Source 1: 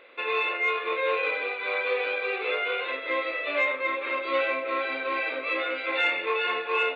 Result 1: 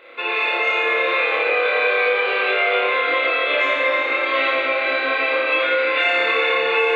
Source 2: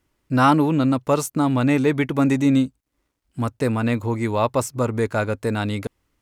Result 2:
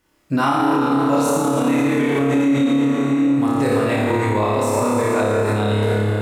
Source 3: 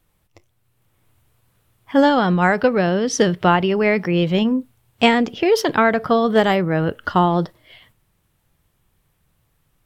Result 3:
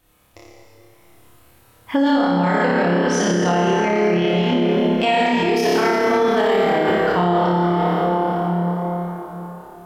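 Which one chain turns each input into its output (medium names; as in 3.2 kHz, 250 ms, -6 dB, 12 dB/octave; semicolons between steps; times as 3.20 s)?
dynamic bell 1.3 kHz, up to -5 dB, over -41 dBFS, Q 6.8; on a send: flutter echo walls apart 4.9 m, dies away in 0.91 s; on the sum: plate-style reverb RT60 4.3 s, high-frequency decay 0.6×, DRR -2 dB; in parallel at +3 dB: compression, threshold -20 dBFS; on the sum: peak limiter -5.5 dBFS; bass shelf 160 Hz -7 dB; trim -3 dB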